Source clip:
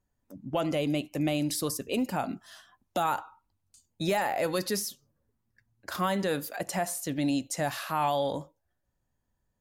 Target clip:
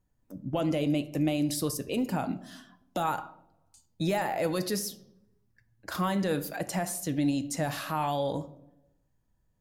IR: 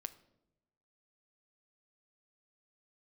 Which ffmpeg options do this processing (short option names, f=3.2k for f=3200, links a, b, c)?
-filter_complex "[0:a]lowshelf=f=330:g=6,asplit=2[a][b];[b]alimiter=limit=-24dB:level=0:latency=1,volume=0.5dB[c];[a][c]amix=inputs=2:normalize=0[d];[1:a]atrim=start_sample=2205,asetrate=48510,aresample=44100[e];[d][e]afir=irnorm=-1:irlink=0,volume=-2dB"